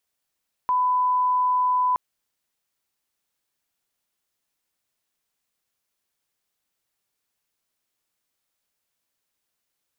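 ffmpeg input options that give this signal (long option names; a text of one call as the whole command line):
ffmpeg -f lavfi -i "sine=frequency=1000:duration=1.27:sample_rate=44100,volume=0.06dB" out.wav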